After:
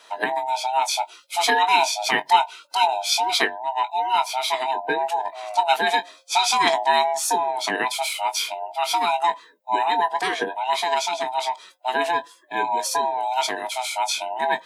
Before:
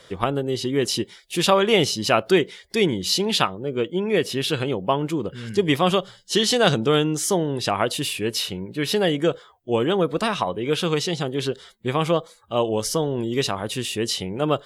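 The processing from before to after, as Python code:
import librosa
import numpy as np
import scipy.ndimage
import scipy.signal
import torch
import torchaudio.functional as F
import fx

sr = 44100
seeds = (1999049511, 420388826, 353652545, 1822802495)

y = fx.band_swap(x, sr, width_hz=500)
y = scipy.signal.sosfilt(scipy.signal.butter(4, 300.0, 'highpass', fs=sr, output='sos'), y)
y = fx.doubler(y, sr, ms=21.0, db=-10.0)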